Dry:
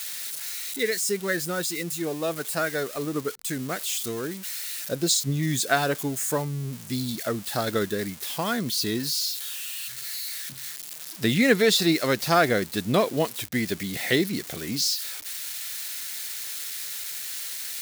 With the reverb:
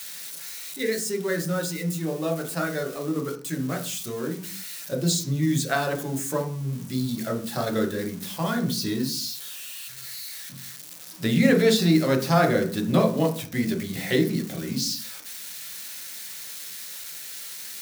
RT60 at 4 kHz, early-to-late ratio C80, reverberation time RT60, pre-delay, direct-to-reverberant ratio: 0.40 s, 15.0 dB, 0.45 s, 4 ms, 1.5 dB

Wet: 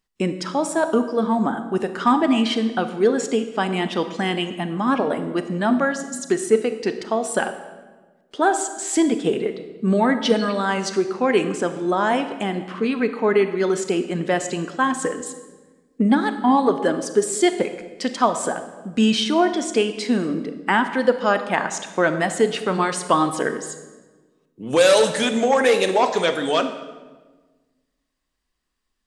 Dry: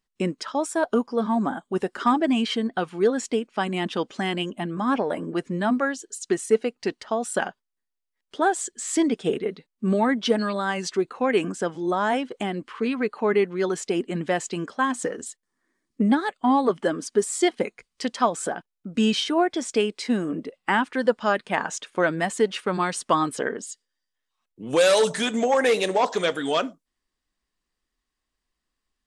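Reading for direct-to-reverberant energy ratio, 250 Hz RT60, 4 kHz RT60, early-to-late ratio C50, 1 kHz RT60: 9.0 dB, 1.6 s, 0.95 s, 10.0 dB, 1.2 s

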